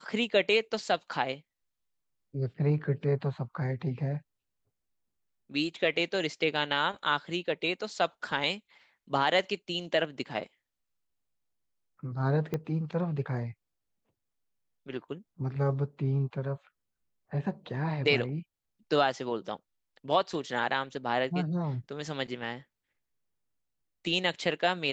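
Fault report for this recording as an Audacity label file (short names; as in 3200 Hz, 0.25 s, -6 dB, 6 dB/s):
12.540000	12.540000	pop -19 dBFS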